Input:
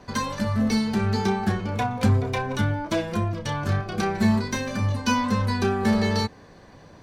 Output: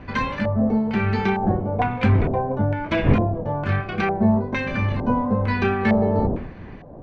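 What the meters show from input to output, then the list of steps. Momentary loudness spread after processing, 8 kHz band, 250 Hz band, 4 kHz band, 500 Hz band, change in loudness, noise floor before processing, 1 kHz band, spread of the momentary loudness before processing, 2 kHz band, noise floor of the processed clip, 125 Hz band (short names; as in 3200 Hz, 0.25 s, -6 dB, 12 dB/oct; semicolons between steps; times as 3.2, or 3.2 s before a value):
6 LU, under -15 dB, +2.5 dB, -6.0 dB, +4.5 dB, +3.0 dB, -49 dBFS, +3.0 dB, 5 LU, +3.0 dB, -39 dBFS, +2.5 dB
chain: wind noise 230 Hz -31 dBFS; LFO low-pass square 1.1 Hz 690–2400 Hz; gain +1.5 dB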